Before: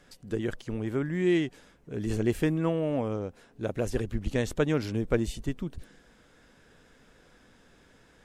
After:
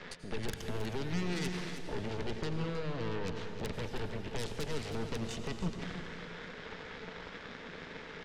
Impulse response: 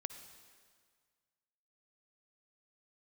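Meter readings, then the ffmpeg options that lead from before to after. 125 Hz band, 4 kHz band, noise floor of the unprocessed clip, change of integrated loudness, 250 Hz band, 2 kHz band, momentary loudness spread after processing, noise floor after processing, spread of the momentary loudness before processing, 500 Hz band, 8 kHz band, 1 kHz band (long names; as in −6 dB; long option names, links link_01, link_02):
−6.5 dB, +1.5 dB, −60 dBFS, −9.0 dB, −10.0 dB, −3.0 dB, 9 LU, −48 dBFS, 10 LU, −9.0 dB, −2.0 dB, −1.5 dB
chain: -filter_complex "[0:a]alimiter=limit=-24dB:level=0:latency=1:release=257,areverse,acompressor=threshold=-42dB:ratio=16,areverse,highpass=170,equalizer=frequency=170:width_type=q:width=4:gain=8,equalizer=frequency=310:width_type=q:width=4:gain=-7,equalizer=frequency=440:width_type=q:width=4:gain=9,equalizer=frequency=710:width_type=q:width=4:gain=-8,equalizer=frequency=1300:width_type=q:width=4:gain=3,equalizer=frequency=2000:width_type=q:width=4:gain=8,lowpass=frequency=4200:width=0.5412,lowpass=frequency=4200:width=1.3066,aeval=exprs='0.0237*(cos(1*acos(clip(val(0)/0.0237,-1,1)))-cos(1*PI/2))+0.00841*(cos(8*acos(clip(val(0)/0.0237,-1,1)))-cos(8*PI/2))':channel_layout=same,acrossover=split=320|3000[link_01][link_02][link_03];[link_02]acompressor=threshold=-51dB:ratio=6[link_04];[link_01][link_04][link_03]amix=inputs=3:normalize=0,aecho=1:1:317:0.316[link_05];[1:a]atrim=start_sample=2205,asetrate=28665,aresample=44100[link_06];[link_05][link_06]afir=irnorm=-1:irlink=0,asplit=2[link_07][link_08];[link_08]asoftclip=type=hard:threshold=-39dB,volume=-4.5dB[link_09];[link_07][link_09]amix=inputs=2:normalize=0,volume=5dB"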